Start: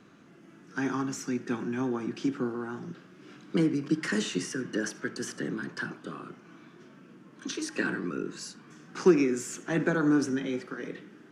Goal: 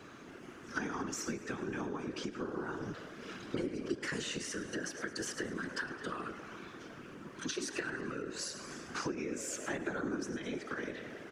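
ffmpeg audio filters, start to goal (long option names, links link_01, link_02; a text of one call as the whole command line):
ffmpeg -i in.wav -filter_complex "[0:a]highpass=frequency=360:poles=1,asplit=2[link_01][link_02];[link_02]asplit=6[link_03][link_04][link_05][link_06][link_07][link_08];[link_03]adelay=107,afreqshift=44,volume=-15dB[link_09];[link_04]adelay=214,afreqshift=88,volume=-19.6dB[link_10];[link_05]adelay=321,afreqshift=132,volume=-24.2dB[link_11];[link_06]adelay=428,afreqshift=176,volume=-28.7dB[link_12];[link_07]adelay=535,afreqshift=220,volume=-33.3dB[link_13];[link_08]adelay=642,afreqshift=264,volume=-37.9dB[link_14];[link_09][link_10][link_11][link_12][link_13][link_14]amix=inputs=6:normalize=0[link_15];[link_01][link_15]amix=inputs=2:normalize=0,acompressor=threshold=-43dB:ratio=6,afftfilt=real='hypot(re,im)*cos(2*PI*random(0))':imag='hypot(re,im)*sin(2*PI*random(1))':win_size=512:overlap=0.75,volume=13dB" out.wav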